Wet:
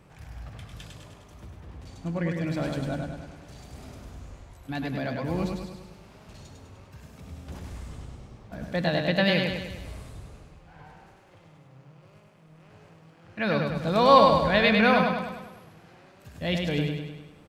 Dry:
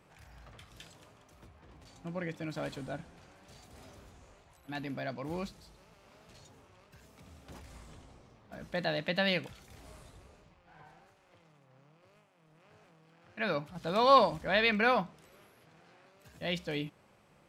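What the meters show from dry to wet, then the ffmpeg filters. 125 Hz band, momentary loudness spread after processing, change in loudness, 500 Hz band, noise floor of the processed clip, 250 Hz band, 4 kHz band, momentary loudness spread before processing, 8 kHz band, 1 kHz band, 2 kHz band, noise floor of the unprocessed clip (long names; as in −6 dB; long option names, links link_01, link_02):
+12.5 dB, 24 LU, +7.0 dB, +7.5 dB, −55 dBFS, +11.0 dB, +6.0 dB, 20 LU, +6.0 dB, +6.5 dB, +6.0 dB, −65 dBFS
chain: -filter_complex "[0:a]lowshelf=frequency=220:gain=10,asplit=2[link_01][link_02];[link_02]aecho=0:1:101|202|303|404|505|606|707:0.631|0.347|0.191|0.105|0.0577|0.0318|0.0175[link_03];[link_01][link_03]amix=inputs=2:normalize=0,volume=4dB"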